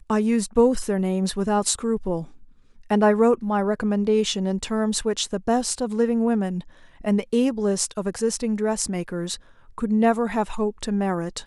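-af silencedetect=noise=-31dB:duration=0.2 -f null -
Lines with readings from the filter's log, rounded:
silence_start: 2.24
silence_end: 2.90 | silence_duration: 0.67
silence_start: 6.60
silence_end: 7.05 | silence_duration: 0.44
silence_start: 9.35
silence_end: 9.78 | silence_duration: 0.43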